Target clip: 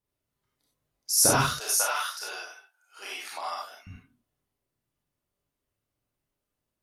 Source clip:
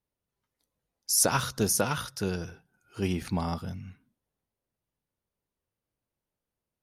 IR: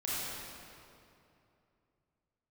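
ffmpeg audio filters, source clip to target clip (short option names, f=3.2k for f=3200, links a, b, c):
-filter_complex "[0:a]asettb=1/sr,asplit=3[a][b][c];[a]atrim=end=1.504[d];[b]atrim=start=1.5:end=3.87,asetpts=PTS-STARTPTS,afade=t=in:d=0.004:c=qsin,afade=t=out:st=2.366:d=0.004:c=qsin,highpass=f=690:w=0.5412,highpass=f=690:w=1.3066[e];[c]atrim=start=3.866[f];[d][e]acrossfade=d=0.004:c1=hsin:c2=qsin[g];[g][f]acrossfade=d=0.004:c1=qsin:c2=hsin[h];[1:a]atrim=start_sample=2205,atrim=end_sample=4410[i];[h][i]afir=irnorm=-1:irlink=0,volume=2dB"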